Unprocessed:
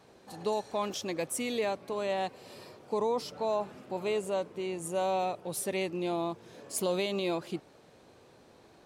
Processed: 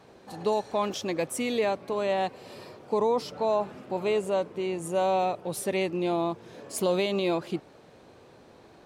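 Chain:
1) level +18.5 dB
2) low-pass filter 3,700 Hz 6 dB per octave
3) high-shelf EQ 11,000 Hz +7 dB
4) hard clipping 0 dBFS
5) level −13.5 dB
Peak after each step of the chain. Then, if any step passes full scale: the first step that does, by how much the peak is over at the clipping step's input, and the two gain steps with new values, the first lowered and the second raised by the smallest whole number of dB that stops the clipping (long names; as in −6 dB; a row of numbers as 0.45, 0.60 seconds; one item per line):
−1.5, −2.0, −2.0, −2.0, −15.5 dBFS
no step passes full scale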